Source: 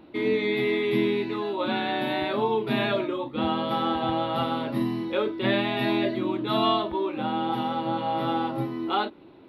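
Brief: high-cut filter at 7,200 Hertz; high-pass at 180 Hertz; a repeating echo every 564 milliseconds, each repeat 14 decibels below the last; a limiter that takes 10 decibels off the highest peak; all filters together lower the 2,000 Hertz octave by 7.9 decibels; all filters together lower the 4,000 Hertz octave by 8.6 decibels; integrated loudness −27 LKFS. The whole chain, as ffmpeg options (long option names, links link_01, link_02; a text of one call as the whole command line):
ffmpeg -i in.wav -af "highpass=180,lowpass=7200,equalizer=frequency=2000:width_type=o:gain=-8,equalizer=frequency=4000:width_type=o:gain=-7.5,alimiter=limit=-23dB:level=0:latency=1,aecho=1:1:564|1128:0.2|0.0399,volume=4.5dB" out.wav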